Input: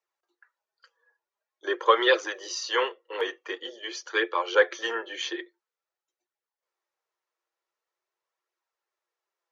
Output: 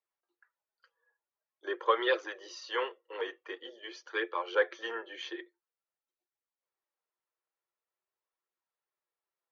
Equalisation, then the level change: distance through air 150 m; -6.5 dB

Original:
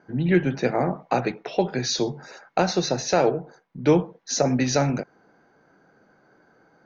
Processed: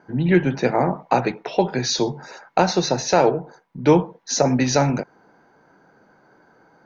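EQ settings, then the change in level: peaking EQ 930 Hz +7 dB 0.26 oct; +3.0 dB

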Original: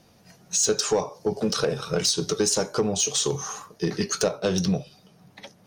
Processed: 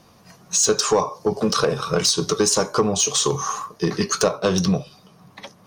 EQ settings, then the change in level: peaking EQ 1.1 kHz +11 dB 0.33 oct; +4.0 dB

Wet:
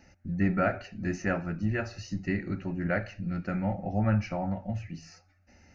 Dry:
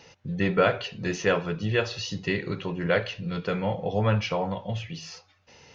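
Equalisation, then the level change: tone controls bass +14 dB, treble -1 dB; dynamic bell 980 Hz, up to +6 dB, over -43 dBFS, Q 2.7; static phaser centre 680 Hz, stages 8; -4.5 dB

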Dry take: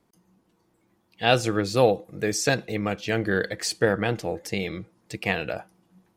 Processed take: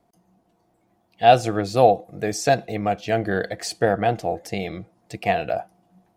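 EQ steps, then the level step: bass shelf 340 Hz +3.5 dB; peaking EQ 700 Hz +15 dB 0.36 oct; -2.0 dB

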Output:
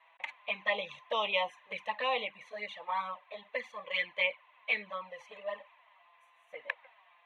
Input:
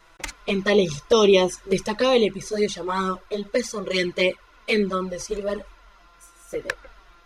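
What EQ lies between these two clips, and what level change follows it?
high-pass 870 Hz 12 dB/octave; distance through air 330 m; static phaser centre 1.4 kHz, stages 6; 0.0 dB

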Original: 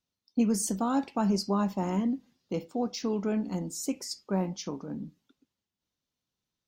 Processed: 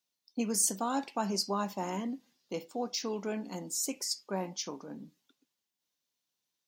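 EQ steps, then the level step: high-pass 540 Hz 6 dB/octave; treble shelf 4.9 kHz +6 dB; band-stop 1.3 kHz, Q 17; 0.0 dB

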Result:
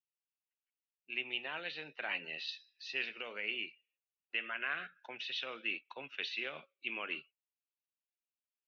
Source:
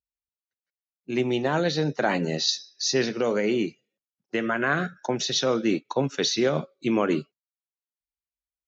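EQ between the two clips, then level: band-pass filter 2.7 kHz, Q 5.7; distance through air 300 m; +6.5 dB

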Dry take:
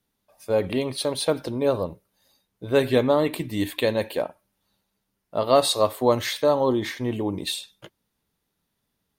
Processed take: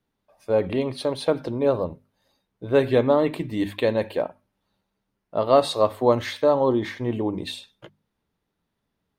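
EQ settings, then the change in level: low-pass 2 kHz 6 dB/octave; hum notches 50/100/150/200/250 Hz; +1.5 dB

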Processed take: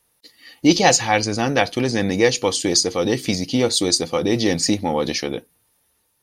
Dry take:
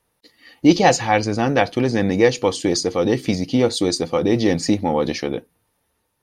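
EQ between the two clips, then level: treble shelf 3 kHz +11 dB; -2.0 dB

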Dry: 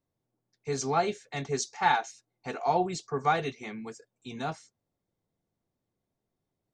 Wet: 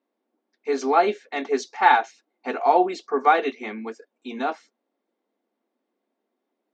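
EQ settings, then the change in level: brick-wall FIR high-pass 210 Hz; low-pass 3 kHz 12 dB/octave; +8.5 dB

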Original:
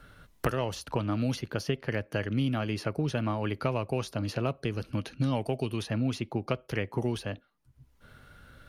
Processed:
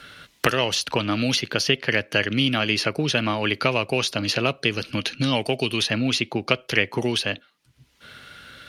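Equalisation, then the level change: frequency weighting D; +7.5 dB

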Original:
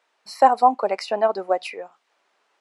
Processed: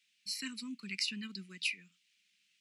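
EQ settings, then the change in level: Chebyshev band-stop 190–2500 Hz, order 3; +1.0 dB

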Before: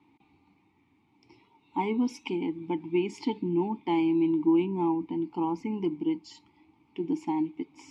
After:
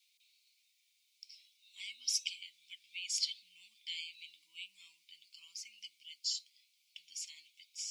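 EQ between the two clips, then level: inverse Chebyshev high-pass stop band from 930 Hz, stop band 70 dB; +15.5 dB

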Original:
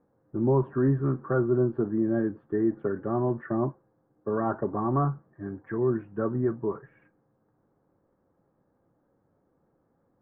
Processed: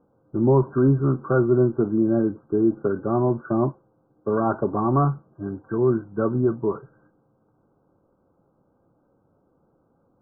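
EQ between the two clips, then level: brick-wall FIR low-pass 1.6 kHz; +5.5 dB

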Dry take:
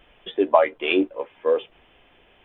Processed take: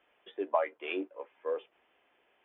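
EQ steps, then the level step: high-pass 61 Hz; three-band isolator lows -20 dB, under 280 Hz, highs -15 dB, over 2.5 kHz; peaking EQ 480 Hz -4 dB 2.8 oct; -8.5 dB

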